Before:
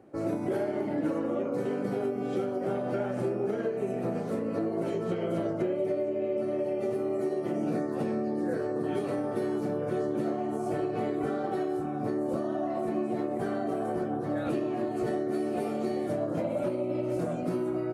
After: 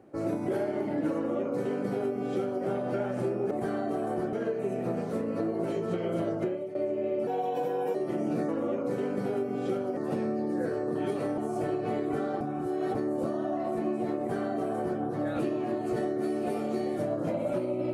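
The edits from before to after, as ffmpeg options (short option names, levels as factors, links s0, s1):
-filter_complex "[0:a]asplit=11[s0][s1][s2][s3][s4][s5][s6][s7][s8][s9][s10];[s0]atrim=end=3.512[s11];[s1]atrim=start=13.288:end=14.112[s12];[s2]atrim=start=3.508:end=5.93,asetpts=PTS-STARTPTS,afade=t=out:st=2.082:d=0.34:silence=0.211349[s13];[s3]atrim=start=5.93:end=6.454,asetpts=PTS-STARTPTS,afade=t=in:d=0.004:c=hsin:silence=0.211349[s14];[s4]atrim=start=6.45:end=7.31,asetpts=PTS-STARTPTS,asetrate=56007,aresample=44100[s15];[s5]atrim=start=7.306:end=7.852[s16];[s6]atrim=start=1.158:end=2.642[s17];[s7]atrim=start=7.848:end=9.262[s18];[s8]atrim=start=10.478:end=11.512[s19];[s9]atrim=start=11.508:end=12.052,asetpts=PTS-STARTPTS,areverse[s20];[s10]atrim=start=12.048[s21];[s11][s12]acrossfade=d=0.004:c1=hsin:c2=hsin[s22];[s13][s14]concat=n=2:v=0:a=1[s23];[s22][s23]acrossfade=d=0.004:c1=hsin:c2=hsin[s24];[s24][s15]acrossfade=d=0.004:c1=hsin:c2=hsin[s25];[s25][s16]acrossfade=d=0.004:c1=hsin:c2=hsin[s26];[s26][s17]acrossfade=d=0.004:c1=hsin:c2=hsin[s27];[s27][s18]acrossfade=d=0.004:c1=hsin:c2=hsin[s28];[s28][s19]acrossfade=d=0.004:c1=hsin:c2=hsin[s29];[s29][s20]acrossfade=d=0.004:c1=hsin:c2=hsin[s30];[s30][s21]acrossfade=d=0.004:c1=hsin:c2=hsin"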